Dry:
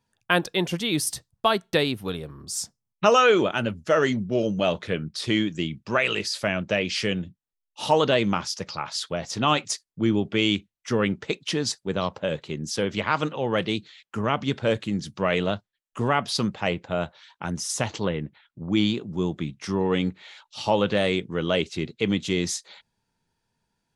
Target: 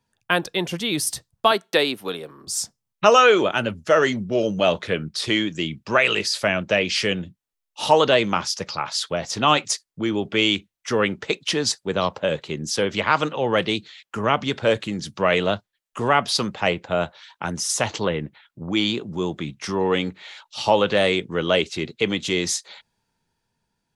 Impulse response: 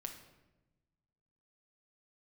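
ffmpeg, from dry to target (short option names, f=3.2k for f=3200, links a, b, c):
-filter_complex "[0:a]asettb=1/sr,asplit=3[a][b][c];[a]atrim=end=1.514[d];[b]atrim=start=1.51:end=2.47,asetpts=PTS-STARTPTS,afade=t=in:d=0.004:c=qsin,afade=t=out:st=0.956:d=0.004:c=qsin,highpass=260[e];[c]atrim=start=2.466[f];[d][e]acrossfade=d=0.004:c1=hsin:c2=qsin[g];[g][f]acrossfade=d=0.004:c1=qsin:c2=hsin,acrossover=split=360[h][i];[h]alimiter=limit=-24dB:level=0:latency=1[j];[i]dynaudnorm=f=130:g=17:m=4.5dB[k];[j][k]amix=inputs=2:normalize=0,volume=1dB"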